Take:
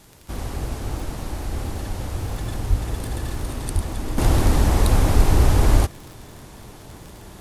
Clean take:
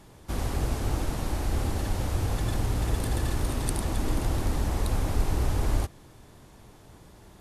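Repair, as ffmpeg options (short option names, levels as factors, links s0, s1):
-filter_complex "[0:a]adeclick=t=4,asplit=3[s0][s1][s2];[s0]afade=t=out:st=2.69:d=0.02[s3];[s1]highpass=f=140:w=0.5412,highpass=f=140:w=1.3066,afade=t=in:st=2.69:d=0.02,afade=t=out:st=2.81:d=0.02[s4];[s2]afade=t=in:st=2.81:d=0.02[s5];[s3][s4][s5]amix=inputs=3:normalize=0,asplit=3[s6][s7][s8];[s6]afade=t=out:st=3.74:d=0.02[s9];[s7]highpass=f=140:w=0.5412,highpass=f=140:w=1.3066,afade=t=in:st=3.74:d=0.02,afade=t=out:st=3.86:d=0.02[s10];[s8]afade=t=in:st=3.86:d=0.02[s11];[s9][s10][s11]amix=inputs=3:normalize=0,asplit=3[s12][s13][s14];[s12]afade=t=out:st=5.34:d=0.02[s15];[s13]highpass=f=140:w=0.5412,highpass=f=140:w=1.3066,afade=t=in:st=5.34:d=0.02,afade=t=out:st=5.46:d=0.02[s16];[s14]afade=t=in:st=5.46:d=0.02[s17];[s15][s16][s17]amix=inputs=3:normalize=0,agate=range=0.0891:threshold=0.02,asetnsamples=n=441:p=0,asendcmd='4.18 volume volume -10dB',volume=1"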